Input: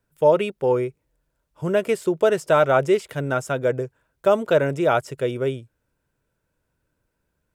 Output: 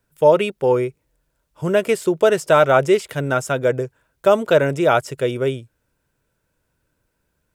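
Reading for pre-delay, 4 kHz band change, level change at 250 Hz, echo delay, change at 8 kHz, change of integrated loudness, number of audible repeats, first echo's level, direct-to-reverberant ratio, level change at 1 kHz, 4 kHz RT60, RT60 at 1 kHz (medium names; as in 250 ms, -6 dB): no reverb, +5.5 dB, +3.0 dB, no echo, +6.5 dB, +3.5 dB, no echo, no echo, no reverb, +3.5 dB, no reverb, no reverb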